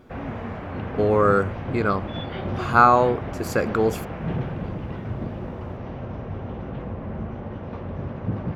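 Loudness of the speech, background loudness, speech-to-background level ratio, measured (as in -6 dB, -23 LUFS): -21.0 LUFS, -32.0 LUFS, 11.0 dB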